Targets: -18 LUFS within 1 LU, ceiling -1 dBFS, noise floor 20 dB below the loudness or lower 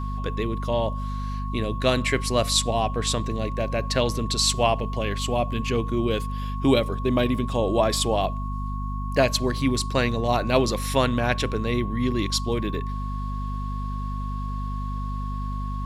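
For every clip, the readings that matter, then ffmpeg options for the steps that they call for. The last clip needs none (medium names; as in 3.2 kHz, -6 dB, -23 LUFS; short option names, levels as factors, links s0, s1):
hum 50 Hz; highest harmonic 250 Hz; hum level -27 dBFS; steady tone 1.1 kHz; tone level -35 dBFS; loudness -25.0 LUFS; peak level -6.0 dBFS; loudness target -18.0 LUFS
-> -af "bandreject=f=50:t=h:w=4,bandreject=f=100:t=h:w=4,bandreject=f=150:t=h:w=4,bandreject=f=200:t=h:w=4,bandreject=f=250:t=h:w=4"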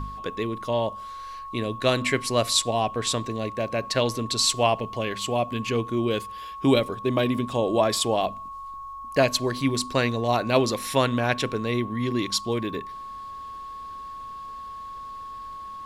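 hum not found; steady tone 1.1 kHz; tone level -35 dBFS
-> -af "bandreject=f=1100:w=30"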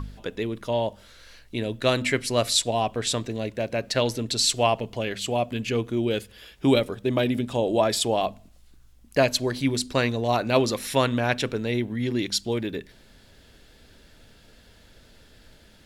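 steady tone not found; loudness -25.0 LUFS; peak level -5.5 dBFS; loudness target -18.0 LUFS
-> -af "volume=2.24,alimiter=limit=0.891:level=0:latency=1"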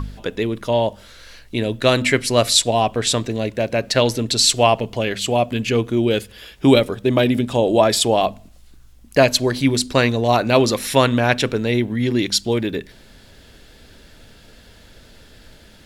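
loudness -18.0 LUFS; peak level -1.0 dBFS; noise floor -47 dBFS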